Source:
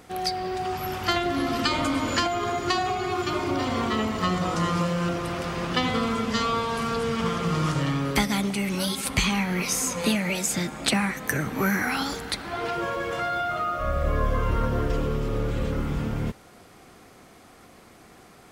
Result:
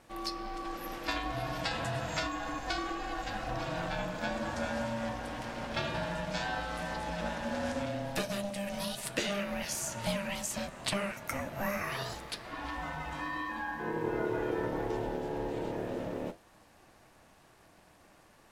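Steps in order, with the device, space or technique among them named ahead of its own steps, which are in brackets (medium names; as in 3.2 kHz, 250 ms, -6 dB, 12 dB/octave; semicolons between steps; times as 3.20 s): 7.85–8.67 s: peaking EQ 1.1 kHz -4 dB 2.2 oct; alien voice (ring modulator 400 Hz; flange 2 Hz, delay 7.5 ms, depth 5.6 ms, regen -68%); trim -2.5 dB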